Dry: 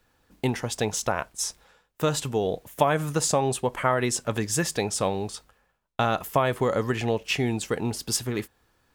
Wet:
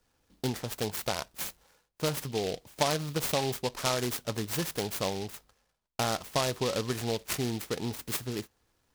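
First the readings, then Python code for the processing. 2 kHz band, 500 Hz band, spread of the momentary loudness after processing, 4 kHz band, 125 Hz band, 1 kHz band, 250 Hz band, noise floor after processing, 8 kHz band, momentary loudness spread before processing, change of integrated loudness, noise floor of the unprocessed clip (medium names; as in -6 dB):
-6.5 dB, -6.5 dB, 8 LU, -1.5 dB, -6.0 dB, -7.5 dB, -6.0 dB, -75 dBFS, -7.0 dB, 7 LU, -5.5 dB, -69 dBFS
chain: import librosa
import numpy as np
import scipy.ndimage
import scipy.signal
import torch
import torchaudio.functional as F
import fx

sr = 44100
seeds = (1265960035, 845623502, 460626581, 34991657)

y = fx.noise_mod_delay(x, sr, seeds[0], noise_hz=3600.0, depth_ms=0.11)
y = y * 10.0 ** (-6.0 / 20.0)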